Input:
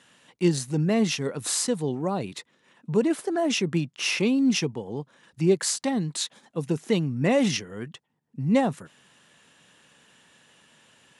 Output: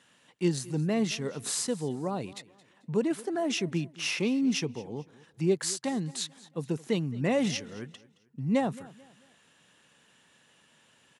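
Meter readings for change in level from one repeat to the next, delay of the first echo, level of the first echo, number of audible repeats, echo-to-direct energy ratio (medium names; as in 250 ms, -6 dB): -9.0 dB, 220 ms, -20.5 dB, 2, -20.0 dB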